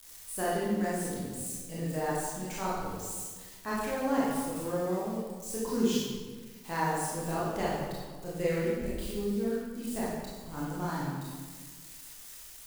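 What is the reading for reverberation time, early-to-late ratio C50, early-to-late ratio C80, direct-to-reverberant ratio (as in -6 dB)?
1.5 s, -1.5 dB, 1.5 dB, -7.5 dB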